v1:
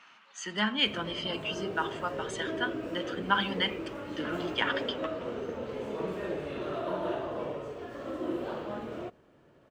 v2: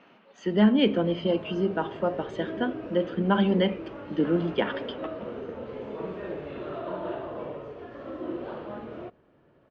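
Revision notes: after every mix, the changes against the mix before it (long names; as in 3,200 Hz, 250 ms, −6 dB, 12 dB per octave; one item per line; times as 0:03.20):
speech: add low shelf with overshoot 770 Hz +13 dB, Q 1.5
master: add high-frequency loss of the air 220 metres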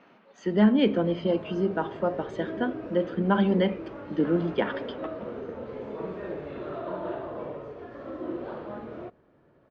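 master: add parametric band 2,900 Hz −5.5 dB 0.44 octaves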